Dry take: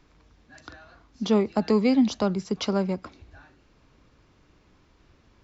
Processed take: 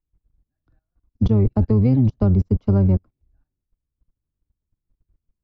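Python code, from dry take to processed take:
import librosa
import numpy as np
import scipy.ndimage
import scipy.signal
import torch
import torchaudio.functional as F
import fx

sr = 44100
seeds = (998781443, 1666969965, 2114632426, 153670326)

y = fx.octave_divider(x, sr, octaves=1, level_db=-1.0)
y = fx.tilt_eq(y, sr, slope=-4.5)
y = fx.level_steps(y, sr, step_db=18)
y = fx.upward_expand(y, sr, threshold_db=-38.0, expansion=2.5)
y = F.gain(torch.from_numpy(y), 4.5).numpy()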